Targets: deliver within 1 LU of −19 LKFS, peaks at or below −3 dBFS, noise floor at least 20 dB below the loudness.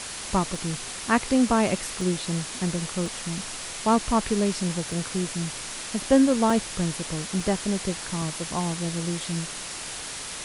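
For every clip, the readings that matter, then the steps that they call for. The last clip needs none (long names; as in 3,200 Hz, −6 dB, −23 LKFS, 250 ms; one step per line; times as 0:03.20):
number of dropouts 7; longest dropout 2.1 ms; background noise floor −36 dBFS; target noise floor −46 dBFS; integrated loudness −26.0 LKFS; sample peak −7.5 dBFS; target loudness −19.0 LKFS
→ repair the gap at 0:00.55/0:02.01/0:03.06/0:04.92/0:06.50/0:07.40/0:08.22, 2.1 ms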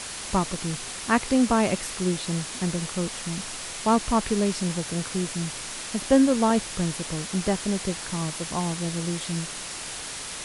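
number of dropouts 0; background noise floor −36 dBFS; target noise floor −46 dBFS
→ broadband denoise 10 dB, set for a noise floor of −36 dBFS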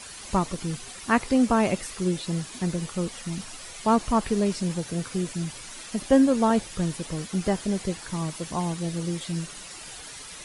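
background noise floor −42 dBFS; target noise floor −47 dBFS
→ broadband denoise 6 dB, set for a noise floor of −42 dBFS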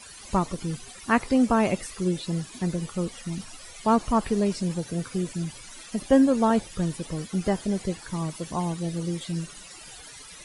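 background noise floor −45 dBFS; target noise floor −47 dBFS
→ broadband denoise 6 dB, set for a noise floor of −45 dBFS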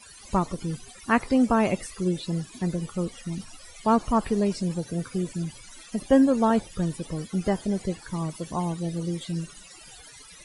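background noise floor −48 dBFS; integrated loudness −27.0 LKFS; sample peak −8.0 dBFS; target loudness −19.0 LKFS
→ level +8 dB
brickwall limiter −3 dBFS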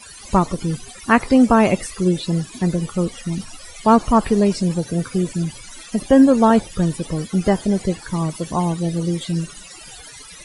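integrated loudness −19.0 LKFS; sample peak −3.0 dBFS; background noise floor −40 dBFS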